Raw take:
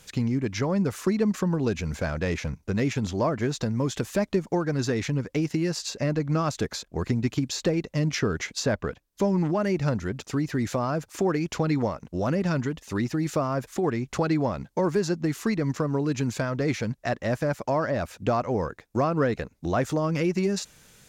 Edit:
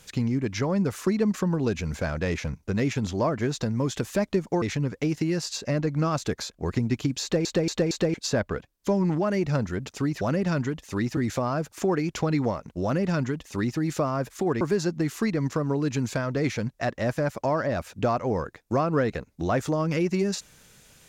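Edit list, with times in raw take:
4.62–4.95 s: delete
7.55 s: stutter in place 0.23 s, 4 plays
12.20–13.16 s: copy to 10.54 s
13.98–14.85 s: delete

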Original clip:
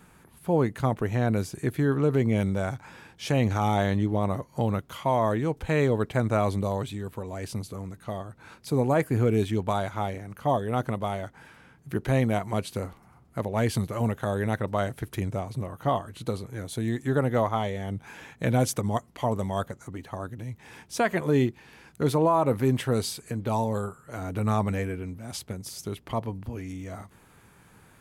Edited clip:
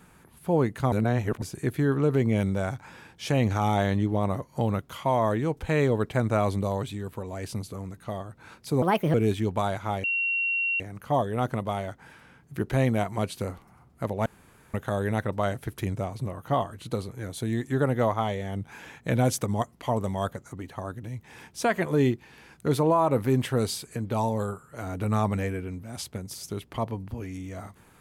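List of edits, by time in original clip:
0.92–1.42 s: reverse
8.82–9.25 s: speed 135%
10.15 s: add tone 2.74 kHz -23.5 dBFS 0.76 s
13.61–14.09 s: room tone

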